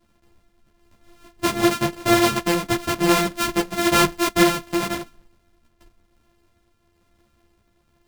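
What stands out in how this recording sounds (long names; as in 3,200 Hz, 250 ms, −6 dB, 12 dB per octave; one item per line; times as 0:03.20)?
a buzz of ramps at a fixed pitch in blocks of 128 samples
tremolo triangle 1 Hz, depth 35%
a shimmering, thickened sound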